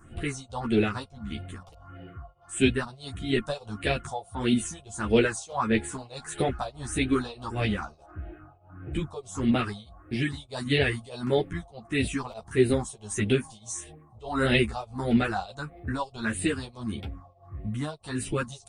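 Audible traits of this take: phasing stages 4, 1.6 Hz, lowest notch 270–1100 Hz; tremolo triangle 1.6 Hz, depth 95%; a shimmering, thickened sound

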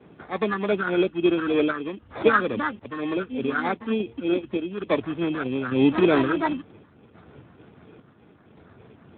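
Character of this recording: phasing stages 4, 3.3 Hz, lowest notch 580–2900 Hz; aliases and images of a low sample rate 2900 Hz, jitter 0%; random-step tremolo; Speex

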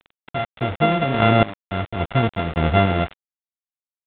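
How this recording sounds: a buzz of ramps at a fixed pitch in blocks of 64 samples; random-step tremolo, depth 95%; a quantiser's noise floor 6-bit, dither none; µ-law

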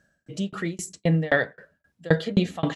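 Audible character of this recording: tremolo saw down 3.8 Hz, depth 100%

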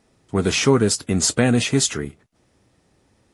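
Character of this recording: noise floor -63 dBFS; spectral tilt -4.0 dB/oct

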